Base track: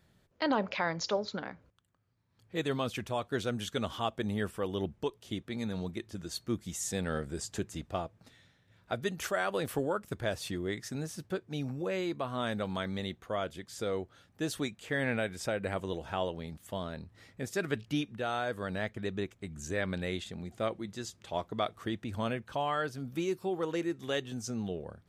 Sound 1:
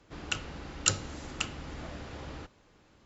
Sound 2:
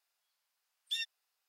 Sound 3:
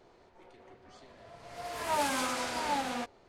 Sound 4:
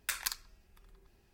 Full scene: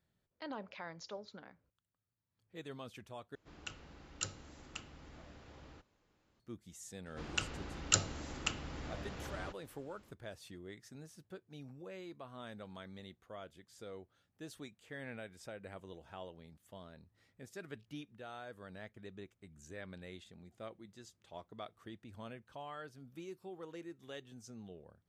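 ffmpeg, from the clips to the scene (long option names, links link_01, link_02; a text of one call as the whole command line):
ffmpeg -i bed.wav -i cue0.wav -filter_complex "[1:a]asplit=2[link_01][link_02];[0:a]volume=-15dB,asplit=2[link_03][link_04];[link_03]atrim=end=3.354[link_05];[link_01]atrim=end=3.05,asetpts=PTS-STARTPTS,volume=-13.5dB[link_06];[link_04]atrim=start=6.396[link_07];[link_02]atrim=end=3.05,asetpts=PTS-STARTPTS,volume=-3dB,afade=type=in:duration=0.004:curve=hsin,afade=type=out:start_time=3.046:duration=0.004:curve=hsin,adelay=311346S[link_08];[link_05][link_06]acrossfade=duration=0.004:curve1=hsin:curve2=hsin[link_09];[link_09][link_07]acrossfade=duration=0.004:curve1=hsin:curve2=hsin[link_10];[link_10][link_08]amix=inputs=2:normalize=0" out.wav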